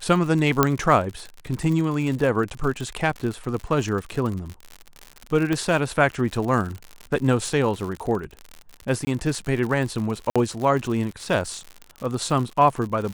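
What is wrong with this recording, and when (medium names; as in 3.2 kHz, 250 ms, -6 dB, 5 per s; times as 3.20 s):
crackle 86 per s -28 dBFS
0.63 s: pop -2 dBFS
5.53 s: pop -11 dBFS
9.05–9.07 s: dropout 20 ms
10.30–10.36 s: dropout 56 ms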